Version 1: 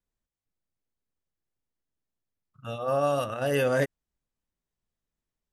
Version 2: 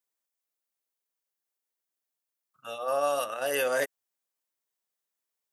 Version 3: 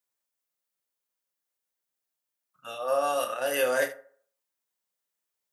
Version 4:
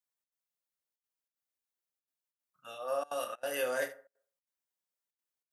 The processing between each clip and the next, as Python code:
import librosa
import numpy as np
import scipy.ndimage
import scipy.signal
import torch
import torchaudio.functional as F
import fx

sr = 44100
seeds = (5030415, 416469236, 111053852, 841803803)

y1 = scipy.signal.sosfilt(scipy.signal.butter(2, 510.0, 'highpass', fs=sr, output='sos'), x)
y1 = fx.high_shelf(y1, sr, hz=7600.0, db=11.0)
y2 = fx.room_early_taps(y1, sr, ms=(32, 76), db=(-8.0, -15.0))
y2 = fx.rev_fdn(y2, sr, rt60_s=0.53, lf_ratio=0.75, hf_ratio=0.5, size_ms=33.0, drr_db=9.0)
y3 = fx.step_gate(y2, sr, bpm=188, pattern='xxx.xxxxxxxx.', floor_db=-24.0, edge_ms=4.5)
y3 = y3 * 10.0 ** (-7.5 / 20.0)